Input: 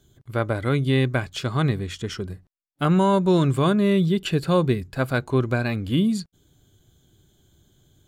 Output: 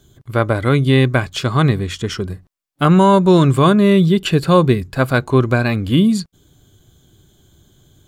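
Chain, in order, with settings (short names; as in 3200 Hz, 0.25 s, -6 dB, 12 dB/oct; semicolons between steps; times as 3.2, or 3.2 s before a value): bell 1100 Hz +3.5 dB 0.25 oct; gain +7.5 dB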